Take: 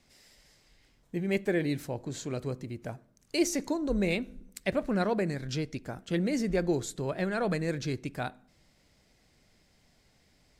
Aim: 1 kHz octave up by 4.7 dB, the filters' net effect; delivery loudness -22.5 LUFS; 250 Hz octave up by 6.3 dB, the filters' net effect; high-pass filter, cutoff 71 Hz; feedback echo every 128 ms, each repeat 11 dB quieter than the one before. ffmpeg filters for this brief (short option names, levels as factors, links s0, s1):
-af "highpass=71,equalizer=f=250:t=o:g=8.5,equalizer=f=1000:t=o:g=6,aecho=1:1:128|256|384:0.282|0.0789|0.0221,volume=1.68"